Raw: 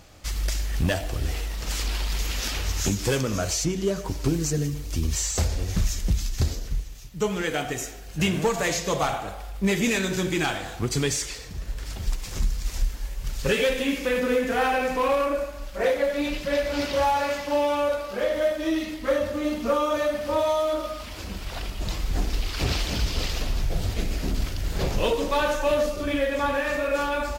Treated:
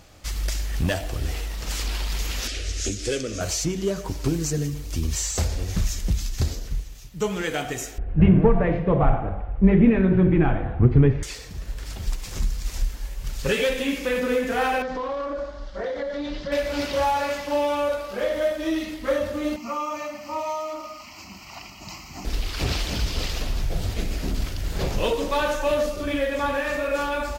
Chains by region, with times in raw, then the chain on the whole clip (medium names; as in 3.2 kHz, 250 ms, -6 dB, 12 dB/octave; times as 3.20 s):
2.47–3.41 s: low-pass 9.4 kHz 24 dB/octave + static phaser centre 390 Hz, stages 4
7.98–11.23 s: low-pass 2.5 kHz 24 dB/octave + tilt EQ -4.5 dB/octave + hum notches 50/100/150/200/250/300/350/400 Hz
14.82–16.52 s: low-pass 5.4 kHz 24 dB/octave + compression, threshold -25 dBFS + peaking EQ 2.5 kHz -14 dB 0.3 oct
19.56–22.25 s: Bessel high-pass 220 Hz + static phaser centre 2.4 kHz, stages 8
whole clip: none